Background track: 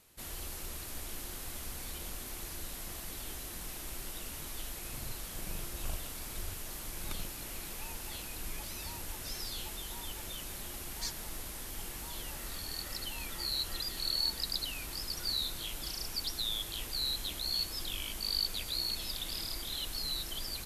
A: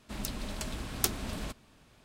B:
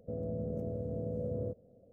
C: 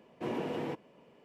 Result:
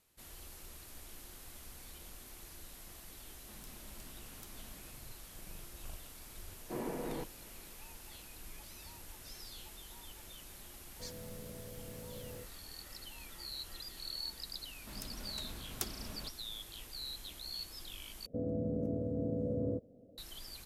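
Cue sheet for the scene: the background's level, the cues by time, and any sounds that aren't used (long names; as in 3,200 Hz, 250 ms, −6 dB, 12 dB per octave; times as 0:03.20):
background track −9.5 dB
0:03.39: mix in A −12.5 dB + downward compressor 4 to 1, threshold −40 dBFS
0:06.49: mix in C −4.5 dB + low-pass filter 2,300 Hz 24 dB per octave
0:10.92: mix in B −12.5 dB + converter with an unsteady clock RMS 0.034 ms
0:14.77: mix in A −10 dB
0:18.26: overwrite with B −1 dB + parametric band 280 Hz +11 dB 0.44 octaves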